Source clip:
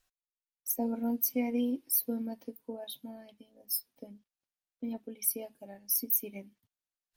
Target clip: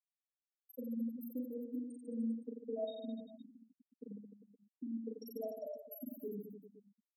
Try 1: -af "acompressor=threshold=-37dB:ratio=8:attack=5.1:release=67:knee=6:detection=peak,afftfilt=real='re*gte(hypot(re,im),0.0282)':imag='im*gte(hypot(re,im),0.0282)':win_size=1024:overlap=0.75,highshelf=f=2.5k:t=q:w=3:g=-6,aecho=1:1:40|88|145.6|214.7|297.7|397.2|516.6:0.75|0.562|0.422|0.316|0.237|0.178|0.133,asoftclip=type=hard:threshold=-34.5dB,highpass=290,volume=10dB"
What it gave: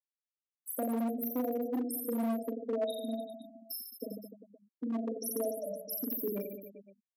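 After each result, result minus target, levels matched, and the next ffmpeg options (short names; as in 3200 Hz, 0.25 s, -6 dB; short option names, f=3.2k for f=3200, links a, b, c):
compressor: peak gain reduction -8 dB; 4000 Hz band +5.5 dB
-af "acompressor=threshold=-46dB:ratio=8:attack=5.1:release=67:knee=6:detection=peak,afftfilt=real='re*gte(hypot(re,im),0.0282)':imag='im*gte(hypot(re,im),0.0282)':win_size=1024:overlap=0.75,highshelf=f=2.5k:t=q:w=3:g=-6,aecho=1:1:40|88|145.6|214.7|297.7|397.2|516.6:0.75|0.562|0.422|0.316|0.237|0.178|0.133,asoftclip=type=hard:threshold=-34.5dB,highpass=290,volume=10dB"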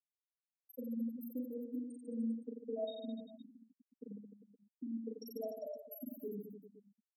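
4000 Hz band +3.0 dB
-af "acompressor=threshold=-46dB:ratio=8:attack=5.1:release=67:knee=6:detection=peak,afftfilt=real='re*gte(hypot(re,im),0.0282)':imag='im*gte(hypot(re,im),0.0282)':win_size=1024:overlap=0.75,highshelf=f=2.5k:t=q:w=3:g=-6,aecho=1:1:40|88|145.6|214.7|297.7|397.2|516.6:0.75|0.562|0.422|0.316|0.237|0.178|0.133,asoftclip=type=hard:threshold=-34.5dB,highpass=290,equalizer=f=4.7k:w=2.8:g=-8.5,volume=10dB"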